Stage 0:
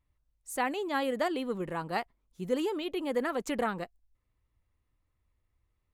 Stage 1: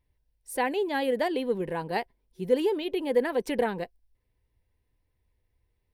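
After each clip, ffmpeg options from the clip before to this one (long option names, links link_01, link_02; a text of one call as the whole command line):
ffmpeg -i in.wav -af "superequalizer=7b=1.78:10b=0.316:15b=0.355,volume=2.5dB" out.wav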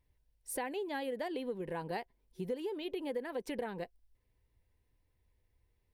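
ffmpeg -i in.wav -af "acompressor=threshold=-35dB:ratio=5,volume=-1dB" out.wav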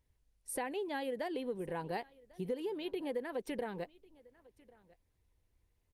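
ffmpeg -i in.wav -af "aresample=32000,aresample=44100,aecho=1:1:1097:0.0668" -ar 48000 -c:a libopus -b:a 32k out.opus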